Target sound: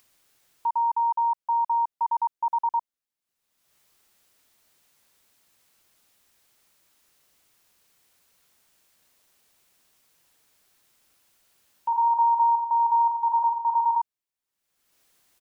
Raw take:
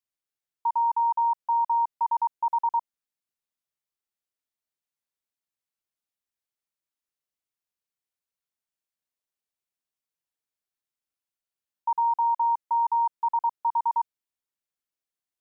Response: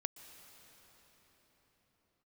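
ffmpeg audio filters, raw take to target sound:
-filter_complex "[0:a]acompressor=mode=upward:threshold=-44dB:ratio=2.5,asplit=3[a][b][c];[a]afade=t=out:st=11.91:d=0.02[d];[b]aecho=1:1:40|90|152.5|230.6|328.3:0.631|0.398|0.251|0.158|0.1,afade=t=in:st=11.91:d=0.02,afade=t=out:st=13.97:d=0.02[e];[c]afade=t=in:st=13.97:d=0.02[f];[d][e][f]amix=inputs=3:normalize=0"

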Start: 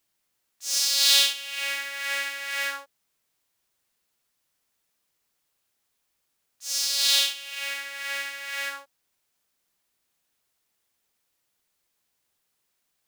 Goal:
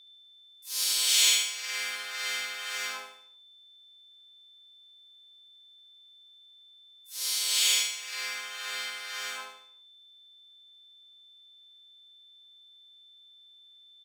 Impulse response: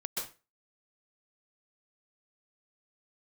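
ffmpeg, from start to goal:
-filter_complex "[0:a]lowpass=8.1k,equalizer=f=770:w=7.6:g=-4.5,acrossover=split=530|2200|3200[a][b][c][d];[b]alimiter=level_in=5.5dB:limit=-24dB:level=0:latency=1:release=67,volume=-5.5dB[e];[a][e][c][d]amix=inputs=4:normalize=0,asoftclip=type=hard:threshold=-7dB,asplit=4[f][g][h][i];[g]asetrate=35002,aresample=44100,atempo=1.25992,volume=-4dB[j];[h]asetrate=58866,aresample=44100,atempo=0.749154,volume=-8dB[k];[i]asetrate=88200,aresample=44100,atempo=0.5,volume=-1dB[l];[f][j][k][l]amix=inputs=4:normalize=0,aeval=exprs='val(0)+0.00501*sin(2*PI*3800*n/s)':c=same,asetrate=41057,aresample=44100,aecho=1:1:74|148|222|296|370:0.531|0.212|0.0849|0.034|0.0136,volume=-7dB"

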